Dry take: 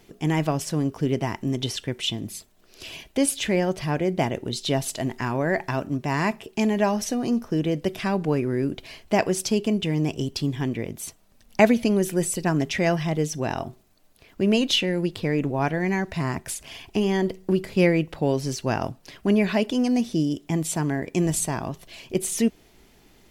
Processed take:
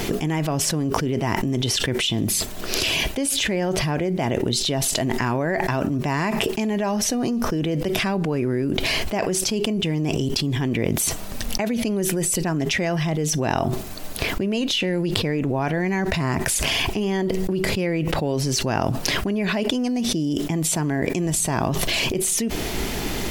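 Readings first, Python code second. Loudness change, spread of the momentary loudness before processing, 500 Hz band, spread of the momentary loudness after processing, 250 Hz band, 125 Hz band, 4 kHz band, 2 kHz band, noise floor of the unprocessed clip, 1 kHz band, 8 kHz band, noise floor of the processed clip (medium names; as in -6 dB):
+2.0 dB, 9 LU, +0.5 dB, 3 LU, +0.5 dB, +2.5 dB, +6.5 dB, +4.0 dB, -57 dBFS, +2.0 dB, +7.0 dB, -29 dBFS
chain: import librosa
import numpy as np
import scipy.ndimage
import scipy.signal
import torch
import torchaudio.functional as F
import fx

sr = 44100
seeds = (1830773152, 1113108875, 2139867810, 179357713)

y = fx.env_flatten(x, sr, amount_pct=100)
y = y * librosa.db_to_amplitude(-11.0)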